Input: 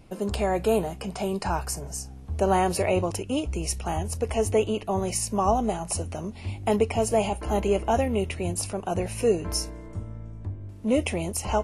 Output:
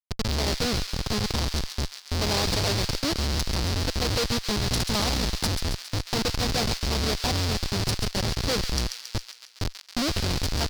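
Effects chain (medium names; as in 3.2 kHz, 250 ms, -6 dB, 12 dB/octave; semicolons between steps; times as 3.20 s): in parallel at -1 dB: compression 16:1, threshold -31 dBFS, peak gain reduction 15.5 dB; on the sum: bass shelf 200 Hz +7.5 dB; Schmitt trigger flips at -19.5 dBFS; on a send: feedback echo behind a high-pass 149 ms, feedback 61%, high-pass 1.6 kHz, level -6 dB; on the sum: speed mistake 44.1 kHz file played as 48 kHz; peaking EQ 4.7 kHz +15 dB 0.97 oct; trim -4.5 dB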